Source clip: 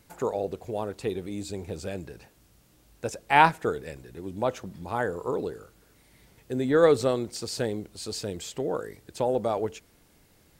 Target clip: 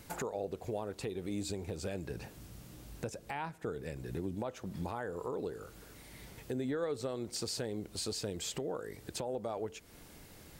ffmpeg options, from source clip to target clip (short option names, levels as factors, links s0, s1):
-filter_complex "[0:a]asettb=1/sr,asplit=3[s0][s1][s2];[s0]atrim=end=2.104[s3];[s1]atrim=start=2.1:end=4.35,asetpts=PTS-STARTPTS,afade=t=in:d=0.004:c=qsin,afade=t=out:st=2.246:d=0.004:c=qsin,equalizer=f=130:w=0.45:g=6[s4];[s2]atrim=start=4.346[s5];[s3][s4]acrossfade=d=0.004:c1=hsin:c2=qsin[s6];[s6][s5]acrossfade=d=0.004:c1=qsin:c2=hsin,acompressor=threshold=0.00794:ratio=2.5,alimiter=level_in=2.82:limit=0.0631:level=0:latency=1:release=308,volume=0.355,volume=2"